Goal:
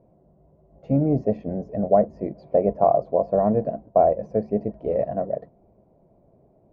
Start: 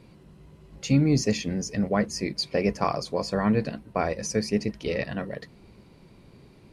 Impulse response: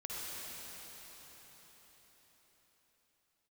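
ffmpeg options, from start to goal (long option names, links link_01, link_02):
-af "agate=range=-7dB:threshold=-43dB:ratio=16:detection=peak,lowpass=frequency=660:width_type=q:width=6.9,volume=-1.5dB"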